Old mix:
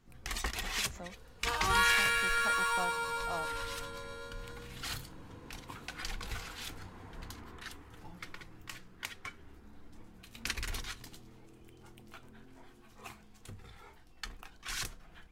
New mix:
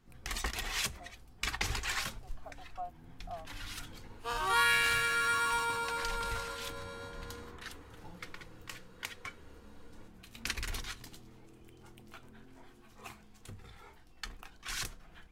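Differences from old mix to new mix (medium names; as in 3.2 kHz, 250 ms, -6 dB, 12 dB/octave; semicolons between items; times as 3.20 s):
speech: add vowel filter a; second sound: entry +2.80 s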